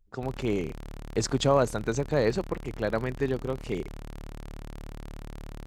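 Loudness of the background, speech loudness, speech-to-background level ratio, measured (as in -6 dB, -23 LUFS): -44.0 LUFS, -29.0 LUFS, 15.0 dB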